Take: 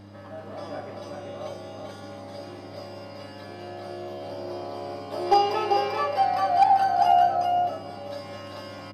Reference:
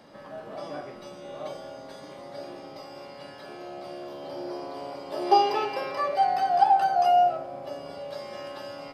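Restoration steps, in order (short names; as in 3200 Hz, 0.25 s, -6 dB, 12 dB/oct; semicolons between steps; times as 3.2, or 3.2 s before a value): clip repair -10.5 dBFS; de-hum 100.8 Hz, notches 3; inverse comb 0.391 s -4 dB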